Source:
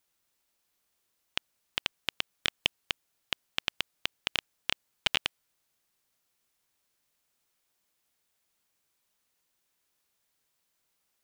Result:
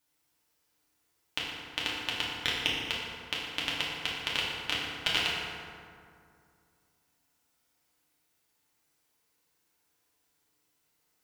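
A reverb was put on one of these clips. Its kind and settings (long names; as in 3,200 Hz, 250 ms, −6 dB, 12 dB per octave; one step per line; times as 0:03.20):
feedback delay network reverb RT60 2.3 s, low-frequency decay 1.2×, high-frequency decay 0.5×, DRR −6.5 dB
level −3.5 dB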